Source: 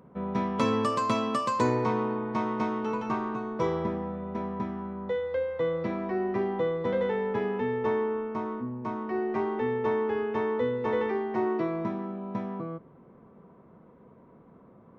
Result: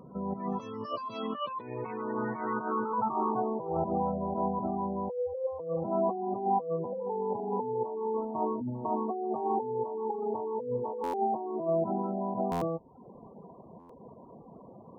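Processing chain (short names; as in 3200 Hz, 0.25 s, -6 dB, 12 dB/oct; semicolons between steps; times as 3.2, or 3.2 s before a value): reverb removal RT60 0.7 s; negative-ratio compressor -36 dBFS, ratio -1; low-pass sweep 6700 Hz -> 820 Hz, 0.66–3.43; spectral gate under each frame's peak -20 dB strong; dynamic EQ 740 Hz, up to +4 dB, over -44 dBFS, Q 2.1; pre-echo 0.102 s -21 dB; stuck buffer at 11.03/12.51/13.79, samples 512, times 8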